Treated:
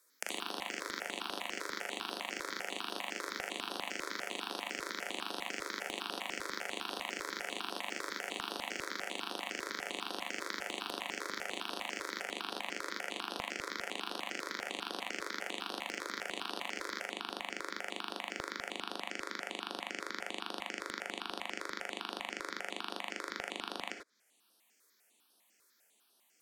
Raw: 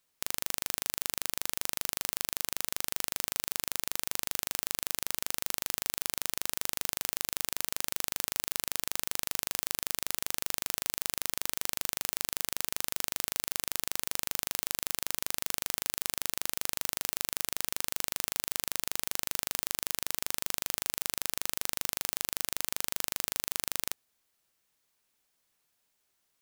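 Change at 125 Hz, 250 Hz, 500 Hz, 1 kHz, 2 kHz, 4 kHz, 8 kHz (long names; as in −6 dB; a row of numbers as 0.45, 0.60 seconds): −10.5, +3.0, +3.0, +2.5, +1.0, −4.0, −15.0 decibels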